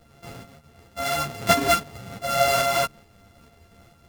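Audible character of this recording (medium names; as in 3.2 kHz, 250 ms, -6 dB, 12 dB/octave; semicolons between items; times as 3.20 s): a buzz of ramps at a fixed pitch in blocks of 64 samples; tremolo saw up 2.3 Hz, depth 40%; a shimmering, thickened sound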